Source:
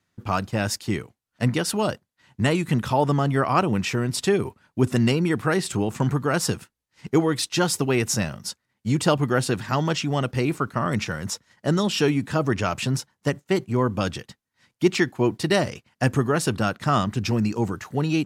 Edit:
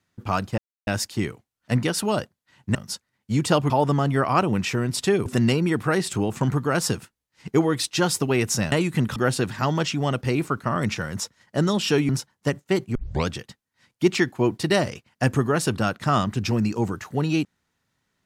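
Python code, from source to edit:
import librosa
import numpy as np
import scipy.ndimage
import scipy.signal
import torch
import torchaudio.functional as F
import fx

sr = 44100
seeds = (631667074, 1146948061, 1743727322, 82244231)

y = fx.edit(x, sr, fx.insert_silence(at_s=0.58, length_s=0.29),
    fx.swap(start_s=2.46, length_s=0.44, other_s=8.31, other_length_s=0.95),
    fx.cut(start_s=4.46, length_s=0.39),
    fx.cut(start_s=12.19, length_s=0.7),
    fx.tape_start(start_s=13.75, length_s=0.32), tone=tone)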